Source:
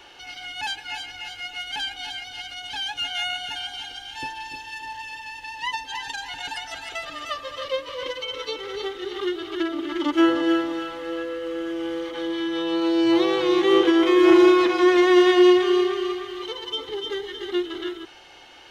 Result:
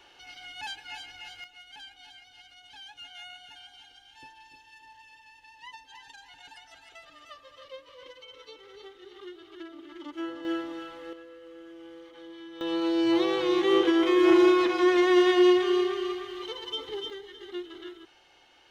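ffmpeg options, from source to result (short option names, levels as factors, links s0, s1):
-af "asetnsamples=n=441:p=0,asendcmd='1.44 volume volume -17.5dB;10.45 volume volume -10dB;11.13 volume volume -18dB;12.61 volume volume -5dB;17.1 volume volume -12dB',volume=0.376"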